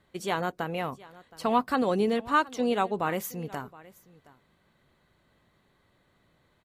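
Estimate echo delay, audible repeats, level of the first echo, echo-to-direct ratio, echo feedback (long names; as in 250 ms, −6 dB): 720 ms, 1, −21.0 dB, −21.0 dB, repeats not evenly spaced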